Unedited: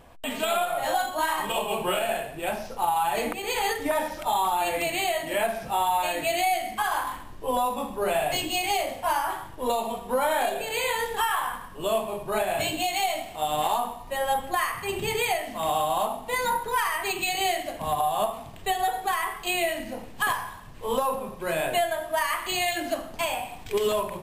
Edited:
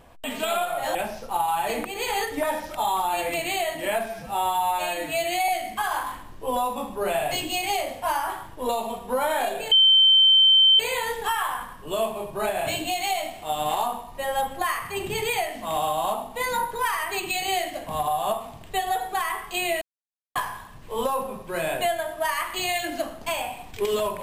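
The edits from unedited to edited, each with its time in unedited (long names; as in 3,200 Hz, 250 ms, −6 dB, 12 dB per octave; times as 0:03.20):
0:00.95–0:02.43: remove
0:05.54–0:06.49: time-stretch 1.5×
0:10.72: insert tone 3,100 Hz −12.5 dBFS 1.08 s
0:19.74–0:20.28: silence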